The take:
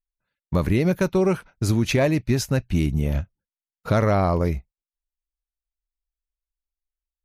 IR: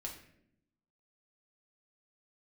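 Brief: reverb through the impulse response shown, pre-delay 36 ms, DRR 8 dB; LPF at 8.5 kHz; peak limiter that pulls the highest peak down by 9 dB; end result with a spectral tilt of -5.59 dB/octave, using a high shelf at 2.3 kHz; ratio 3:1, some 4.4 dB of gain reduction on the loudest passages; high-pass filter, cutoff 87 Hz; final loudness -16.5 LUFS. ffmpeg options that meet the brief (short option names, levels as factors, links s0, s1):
-filter_complex "[0:a]highpass=87,lowpass=8500,highshelf=f=2300:g=6,acompressor=threshold=0.0891:ratio=3,alimiter=limit=0.1:level=0:latency=1,asplit=2[s0][s1];[1:a]atrim=start_sample=2205,adelay=36[s2];[s1][s2]afir=irnorm=-1:irlink=0,volume=0.501[s3];[s0][s3]amix=inputs=2:normalize=0,volume=4.73"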